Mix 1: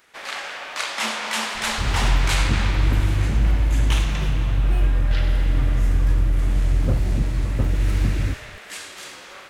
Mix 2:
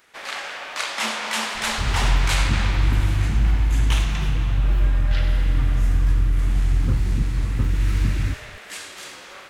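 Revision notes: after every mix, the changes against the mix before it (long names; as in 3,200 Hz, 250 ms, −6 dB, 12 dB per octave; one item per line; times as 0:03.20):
second sound: add phaser with its sweep stopped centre 2,400 Hz, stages 6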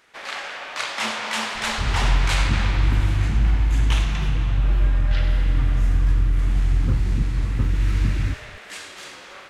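speech: remove Chebyshev high-pass filter 210 Hz
master: add high-shelf EQ 10,000 Hz −10.5 dB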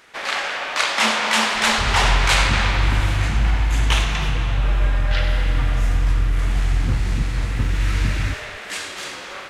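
first sound +7.5 dB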